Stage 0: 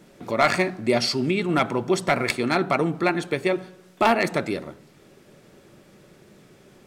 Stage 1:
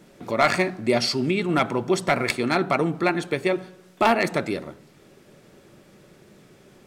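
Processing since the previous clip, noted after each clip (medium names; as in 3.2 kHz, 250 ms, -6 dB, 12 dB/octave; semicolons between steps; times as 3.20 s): no audible change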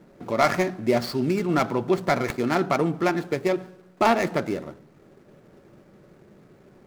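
median filter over 15 samples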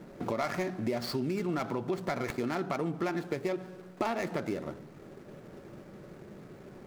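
in parallel at +3 dB: peak limiter -18 dBFS, peak gain reduction 8.5 dB; on the sum: compression 4:1, threshold -27 dBFS, peak gain reduction 14 dB; trim -4 dB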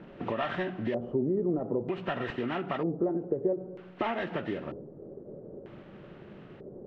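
knee-point frequency compression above 1.3 kHz 1.5:1; LFO low-pass square 0.53 Hz 490–2800 Hz; endings held to a fixed fall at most 200 dB/s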